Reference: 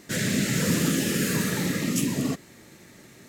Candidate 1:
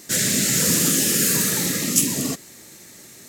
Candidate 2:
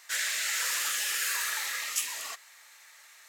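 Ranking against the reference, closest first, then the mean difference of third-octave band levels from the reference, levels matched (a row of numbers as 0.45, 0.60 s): 1, 2; 4.5, 14.5 dB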